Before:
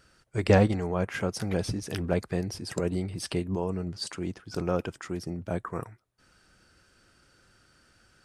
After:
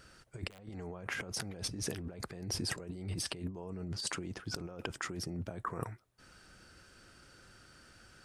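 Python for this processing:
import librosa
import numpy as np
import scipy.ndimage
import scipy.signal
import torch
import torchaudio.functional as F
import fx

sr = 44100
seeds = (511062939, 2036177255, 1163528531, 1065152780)

y = (np.mod(10.0 ** (9.0 / 20.0) * x + 1.0, 2.0) - 1.0) / 10.0 ** (9.0 / 20.0)
y = fx.over_compress(y, sr, threshold_db=-38.0, ratio=-1.0)
y = F.gain(torch.from_numpy(y), -4.0).numpy()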